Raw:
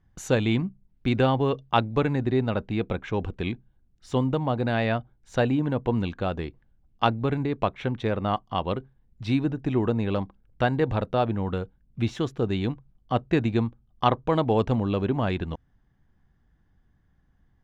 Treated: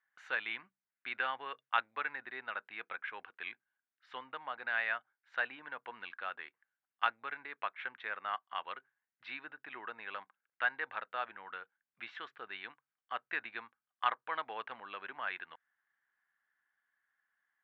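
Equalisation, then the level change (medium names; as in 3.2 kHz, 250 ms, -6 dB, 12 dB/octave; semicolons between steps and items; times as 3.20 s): band-pass filter 1.6 kHz, Q 2.3; distance through air 400 m; differentiator; +16.5 dB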